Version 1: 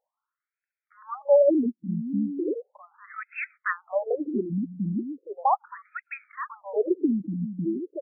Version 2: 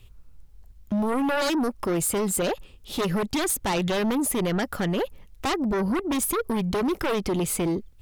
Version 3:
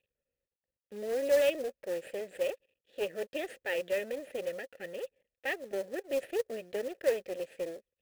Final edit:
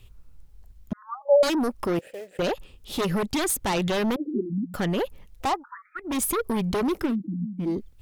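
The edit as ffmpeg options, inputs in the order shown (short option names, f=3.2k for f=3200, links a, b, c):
-filter_complex "[0:a]asplit=4[a][b][c][d];[1:a]asplit=6[e][f][g][h][i][j];[e]atrim=end=0.932[k];[a]atrim=start=0.928:end=1.432[l];[f]atrim=start=1.428:end=1.992[m];[2:a]atrim=start=1.988:end=2.392[n];[g]atrim=start=2.388:end=4.162[o];[b]atrim=start=4.158:end=4.742[p];[h]atrim=start=4.738:end=5.64[q];[c]atrim=start=5.4:end=6.19[r];[i]atrim=start=5.95:end=7.16[s];[d]atrim=start=6.92:end=7.82[t];[j]atrim=start=7.58[u];[k][l]acrossfade=d=0.004:c1=hsin:c2=hsin[v];[v][m]acrossfade=d=0.004:c1=hsin:c2=hsin[w];[w][n]acrossfade=d=0.004:c1=hsin:c2=hsin[x];[x][o]acrossfade=d=0.004:c1=hsin:c2=hsin[y];[y][p]acrossfade=d=0.004:c1=hsin:c2=hsin[z];[z][q]acrossfade=d=0.004:c1=hsin:c2=hsin[aa];[aa][r]acrossfade=d=0.24:c1=tri:c2=tri[ab];[ab][s]acrossfade=d=0.24:c1=tri:c2=tri[ac];[ac][t]acrossfade=d=0.24:c1=tri:c2=tri[ad];[ad][u]acrossfade=d=0.24:c1=tri:c2=tri"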